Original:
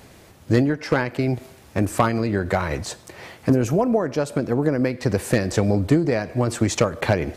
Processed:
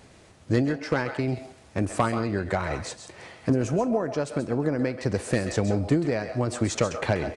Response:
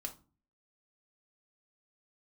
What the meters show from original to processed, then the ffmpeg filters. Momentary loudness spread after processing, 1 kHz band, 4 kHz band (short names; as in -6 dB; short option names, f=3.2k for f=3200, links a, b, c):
8 LU, -4.5 dB, -4.5 dB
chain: -filter_complex "[0:a]asplit=2[a][b];[b]highpass=550[c];[1:a]atrim=start_sample=2205,adelay=132[d];[c][d]afir=irnorm=-1:irlink=0,volume=-5.5dB[e];[a][e]amix=inputs=2:normalize=0,aresample=22050,aresample=44100,volume=-5dB"